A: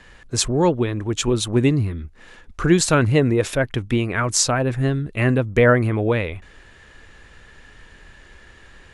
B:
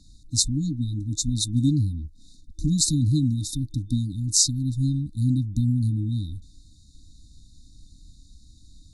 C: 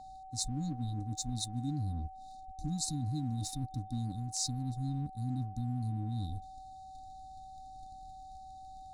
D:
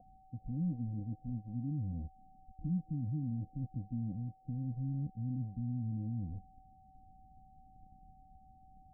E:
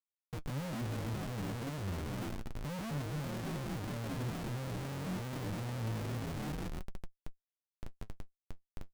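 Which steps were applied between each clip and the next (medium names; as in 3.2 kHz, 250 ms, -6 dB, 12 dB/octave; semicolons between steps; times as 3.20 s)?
peaking EQ 210 Hz -4 dB 1.3 oct; FFT band-reject 320–3600 Hz
waveshaping leveller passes 1; reverse; compression 5:1, threshold -27 dBFS, peak gain reduction 14 dB; reverse; whistle 760 Hz -40 dBFS; trim -7 dB
in parallel at -2.5 dB: peak limiter -31.5 dBFS, peak gain reduction 10 dB; on the sum: rippled Chebyshev low-pass 730 Hz, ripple 9 dB; trim -1 dB
on a send: frequency-shifting echo 137 ms, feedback 53%, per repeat +47 Hz, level -7 dB; on the sum: Schmitt trigger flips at -49 dBFS; flange 0.29 Hz, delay 5.1 ms, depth 6.2 ms, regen +53%; trim +5 dB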